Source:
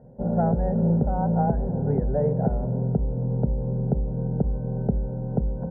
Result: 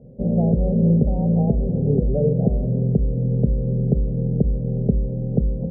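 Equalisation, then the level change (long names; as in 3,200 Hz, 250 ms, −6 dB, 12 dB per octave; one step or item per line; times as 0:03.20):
inverse Chebyshev low-pass filter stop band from 1,400 Hz, stop band 50 dB
+5.0 dB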